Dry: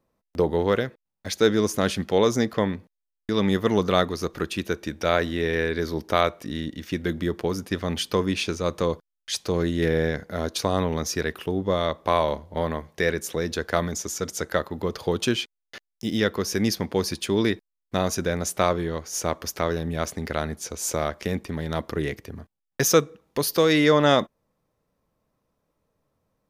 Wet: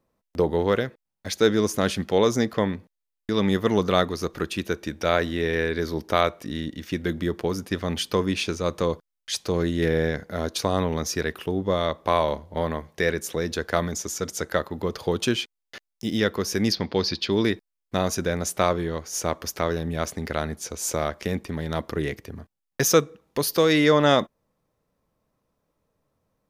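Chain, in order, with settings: 16.72–17.32 s: resonant high shelf 6.4 kHz -13 dB, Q 3

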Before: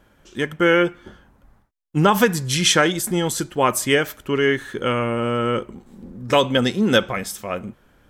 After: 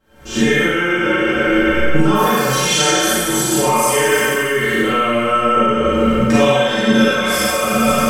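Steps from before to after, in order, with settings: spectral sustain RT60 1.93 s; recorder AGC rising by 80 dB/s; inharmonic resonator 66 Hz, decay 0.29 s, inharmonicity 0.03; Schroeder reverb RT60 0.77 s, combs from 31 ms, DRR -6 dB; trim -2 dB

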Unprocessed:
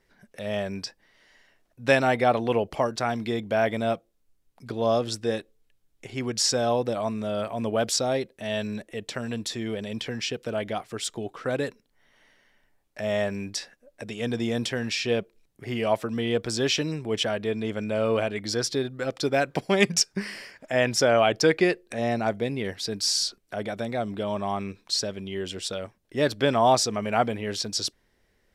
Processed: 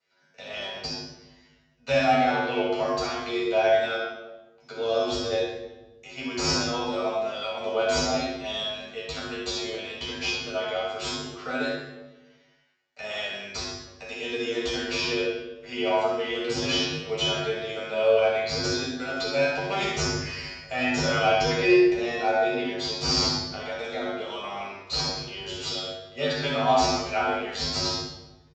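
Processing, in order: differentiator; in parallel at +0.5 dB: compression, threshold -43 dBFS, peak gain reduction 22 dB; on the sum: waveshaping leveller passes 1; one-sided clip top -28 dBFS, bottom -15.5 dBFS; feedback comb 51 Hz, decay 0.32 s, harmonics odd, mix 100%; flutter echo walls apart 10.9 m, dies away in 0.4 s; reverberation RT60 1.1 s, pre-delay 3 ms, DRR -6 dB; resampled via 16 kHz

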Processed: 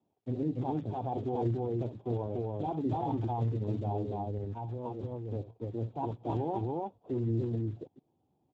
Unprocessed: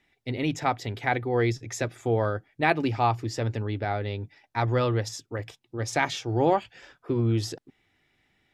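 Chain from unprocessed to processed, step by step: steep low-pass 1 kHz 72 dB/octave; dynamic bell 570 Hz, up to -7 dB, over -42 dBFS, Q 4.4; peak limiter -22.5 dBFS, peak gain reduction 9 dB; 4.57–5.08 s: compressor with a negative ratio -35 dBFS, ratio -1; loudspeakers at several distances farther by 21 m -11 dB, 99 m -1 dB; trim -3 dB; Speex 8 kbps 16 kHz

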